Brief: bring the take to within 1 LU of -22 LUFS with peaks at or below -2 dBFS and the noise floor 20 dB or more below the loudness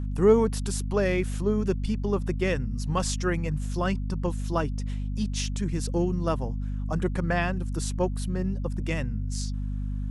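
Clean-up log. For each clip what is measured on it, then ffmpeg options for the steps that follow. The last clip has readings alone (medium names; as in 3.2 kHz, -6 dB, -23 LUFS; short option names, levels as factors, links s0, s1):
hum 50 Hz; highest harmonic 250 Hz; hum level -27 dBFS; loudness -28.0 LUFS; peak level -8.0 dBFS; loudness target -22.0 LUFS
-> -af "bandreject=f=50:t=h:w=4,bandreject=f=100:t=h:w=4,bandreject=f=150:t=h:w=4,bandreject=f=200:t=h:w=4,bandreject=f=250:t=h:w=4"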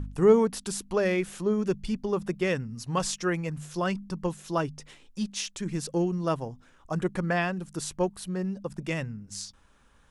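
hum not found; loudness -29.5 LUFS; peak level -8.5 dBFS; loudness target -22.0 LUFS
-> -af "volume=2.37,alimiter=limit=0.794:level=0:latency=1"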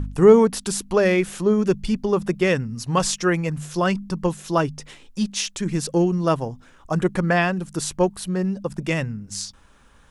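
loudness -22.0 LUFS; peak level -2.0 dBFS; noise floor -51 dBFS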